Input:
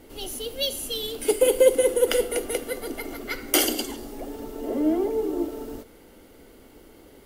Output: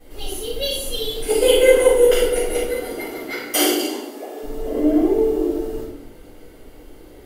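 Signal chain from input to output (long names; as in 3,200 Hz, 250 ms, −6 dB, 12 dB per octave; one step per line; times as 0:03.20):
0:01.33–0:01.87: parametric band 5,700 Hz → 830 Hz +12 dB 0.77 octaves
0:02.74–0:04.41: high-pass filter 100 Hz → 390 Hz 24 dB per octave
convolution reverb RT60 0.85 s, pre-delay 3 ms, DRR −13 dB
level −11 dB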